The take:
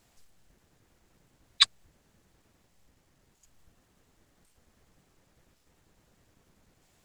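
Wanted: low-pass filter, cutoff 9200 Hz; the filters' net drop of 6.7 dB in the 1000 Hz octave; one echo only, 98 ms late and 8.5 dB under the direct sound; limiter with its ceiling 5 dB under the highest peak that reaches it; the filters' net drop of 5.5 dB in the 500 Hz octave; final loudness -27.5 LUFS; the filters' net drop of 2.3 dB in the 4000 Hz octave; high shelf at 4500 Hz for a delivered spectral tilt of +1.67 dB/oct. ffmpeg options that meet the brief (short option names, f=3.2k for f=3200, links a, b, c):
-af "lowpass=9.2k,equalizer=f=500:t=o:g=-5,equalizer=f=1k:t=o:g=-7.5,equalizer=f=4k:t=o:g=-4.5,highshelf=f=4.5k:g=5.5,alimiter=limit=-10dB:level=0:latency=1,aecho=1:1:98:0.376,volume=3dB"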